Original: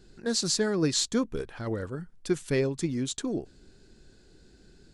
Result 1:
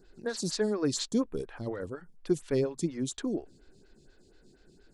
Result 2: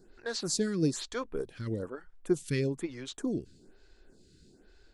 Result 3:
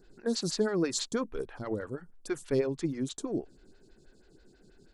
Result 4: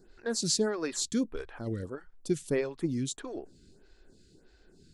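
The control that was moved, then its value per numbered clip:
photocell phaser, rate: 4.2, 1.1, 6.2, 1.6 Hz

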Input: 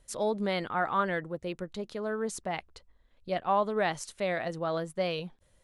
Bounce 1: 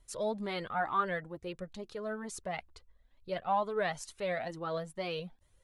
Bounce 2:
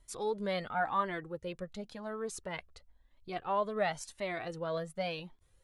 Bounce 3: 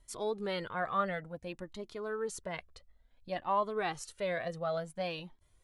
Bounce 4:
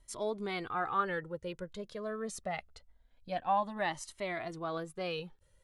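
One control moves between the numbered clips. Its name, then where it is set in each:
cascading flanger, rate: 2.2, 0.94, 0.56, 0.24 Hz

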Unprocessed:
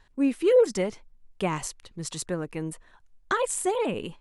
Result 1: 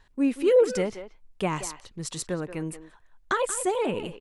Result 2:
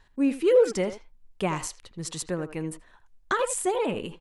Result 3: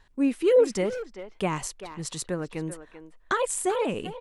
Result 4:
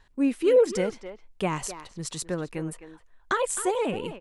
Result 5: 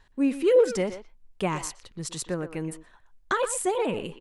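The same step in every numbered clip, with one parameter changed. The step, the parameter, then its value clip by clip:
speakerphone echo, time: 180, 80, 390, 260, 120 ms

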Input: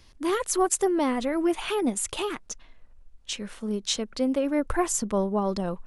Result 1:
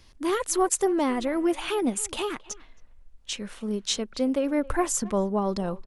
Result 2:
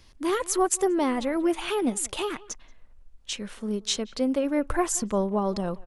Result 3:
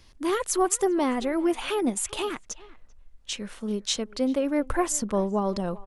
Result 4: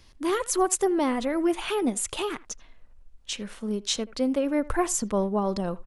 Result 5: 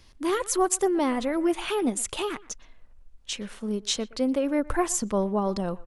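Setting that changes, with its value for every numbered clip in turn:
speakerphone echo, time: 270, 180, 390, 80, 120 ms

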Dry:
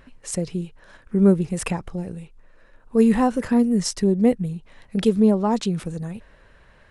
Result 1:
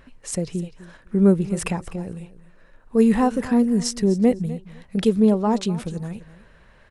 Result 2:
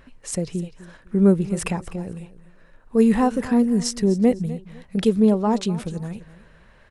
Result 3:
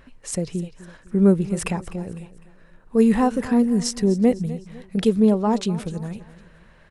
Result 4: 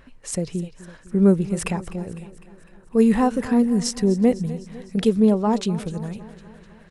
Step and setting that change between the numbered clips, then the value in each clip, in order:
feedback echo, feedback: 16, 26, 40, 59%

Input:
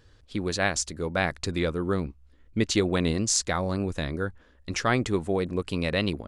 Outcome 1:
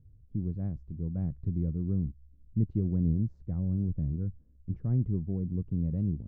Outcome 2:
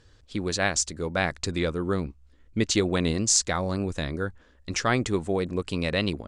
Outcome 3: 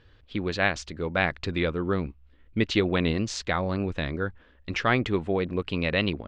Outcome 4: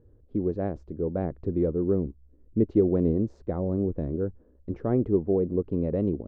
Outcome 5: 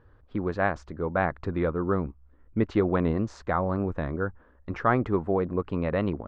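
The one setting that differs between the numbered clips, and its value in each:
synth low-pass, frequency: 150, 8000, 3000, 420, 1200 Hz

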